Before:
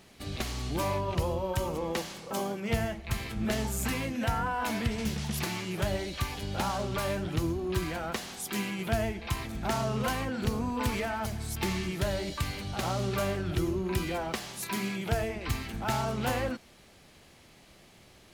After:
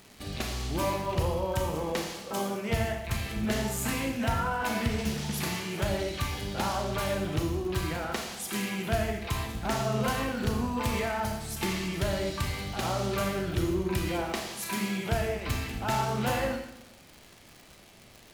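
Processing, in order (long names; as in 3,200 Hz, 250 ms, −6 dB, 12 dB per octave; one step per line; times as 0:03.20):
four-comb reverb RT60 0.82 s, combs from 26 ms, DRR 3 dB
surface crackle 170 per second −39 dBFS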